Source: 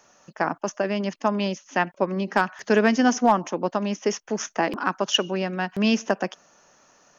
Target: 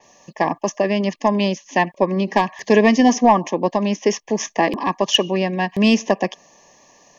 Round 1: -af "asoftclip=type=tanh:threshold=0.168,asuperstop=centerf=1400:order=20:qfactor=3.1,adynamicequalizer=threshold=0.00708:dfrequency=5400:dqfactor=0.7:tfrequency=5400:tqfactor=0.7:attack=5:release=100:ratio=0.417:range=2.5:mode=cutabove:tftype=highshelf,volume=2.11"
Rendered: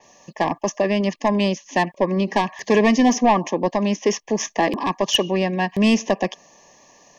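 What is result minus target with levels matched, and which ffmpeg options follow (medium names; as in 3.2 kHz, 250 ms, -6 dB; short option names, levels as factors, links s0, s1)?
saturation: distortion +11 dB
-af "asoftclip=type=tanh:threshold=0.422,asuperstop=centerf=1400:order=20:qfactor=3.1,adynamicequalizer=threshold=0.00708:dfrequency=5400:dqfactor=0.7:tfrequency=5400:tqfactor=0.7:attack=5:release=100:ratio=0.417:range=2.5:mode=cutabove:tftype=highshelf,volume=2.11"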